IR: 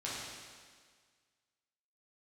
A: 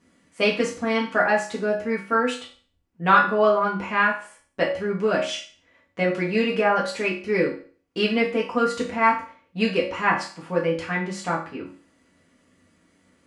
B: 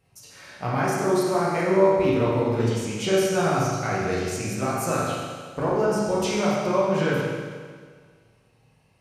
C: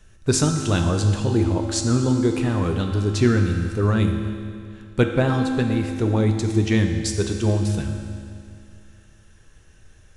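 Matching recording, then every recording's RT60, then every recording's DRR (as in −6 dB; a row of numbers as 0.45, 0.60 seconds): B; 0.40, 1.7, 2.4 seconds; −5.0, −8.0, 3.0 decibels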